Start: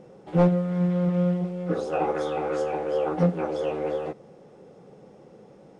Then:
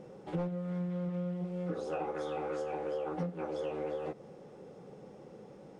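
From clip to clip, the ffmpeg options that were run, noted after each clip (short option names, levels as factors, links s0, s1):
-af "bandreject=f=680:w=19,acompressor=threshold=0.0251:ratio=6,volume=0.841"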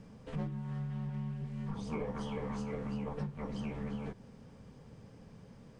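-af "afreqshift=-320,lowshelf=f=170:g=-7.5,volume=1.19"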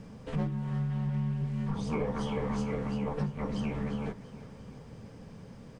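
-af "aecho=1:1:344|688|1032|1376|1720:0.158|0.0856|0.0462|0.025|0.0135,volume=2"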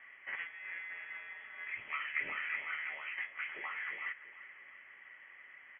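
-af "highpass=f=1500:t=q:w=10,lowpass=f=3000:t=q:w=0.5098,lowpass=f=3000:t=q:w=0.6013,lowpass=f=3000:t=q:w=0.9,lowpass=f=3000:t=q:w=2.563,afreqshift=-3500,volume=0.841"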